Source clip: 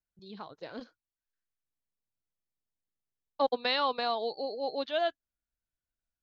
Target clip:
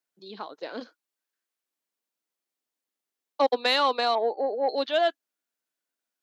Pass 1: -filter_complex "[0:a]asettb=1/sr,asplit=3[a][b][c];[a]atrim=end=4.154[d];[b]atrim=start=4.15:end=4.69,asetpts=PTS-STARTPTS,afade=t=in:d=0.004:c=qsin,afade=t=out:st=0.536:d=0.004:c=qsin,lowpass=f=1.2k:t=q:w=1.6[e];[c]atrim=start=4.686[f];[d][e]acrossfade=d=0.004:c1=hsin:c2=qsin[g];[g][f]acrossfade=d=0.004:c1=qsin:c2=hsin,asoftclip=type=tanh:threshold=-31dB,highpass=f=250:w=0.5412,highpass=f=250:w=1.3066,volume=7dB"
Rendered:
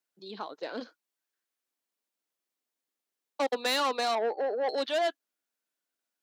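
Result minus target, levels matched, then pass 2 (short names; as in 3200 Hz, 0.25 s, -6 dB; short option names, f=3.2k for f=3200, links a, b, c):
soft clip: distortion +13 dB
-filter_complex "[0:a]asettb=1/sr,asplit=3[a][b][c];[a]atrim=end=4.154[d];[b]atrim=start=4.15:end=4.69,asetpts=PTS-STARTPTS,afade=t=in:d=0.004:c=qsin,afade=t=out:st=0.536:d=0.004:c=qsin,lowpass=f=1.2k:t=q:w=1.6[e];[c]atrim=start=4.686[f];[d][e]acrossfade=d=0.004:c1=hsin:c2=qsin[g];[g][f]acrossfade=d=0.004:c1=qsin:c2=hsin,asoftclip=type=tanh:threshold=-19.5dB,highpass=f=250:w=0.5412,highpass=f=250:w=1.3066,volume=7dB"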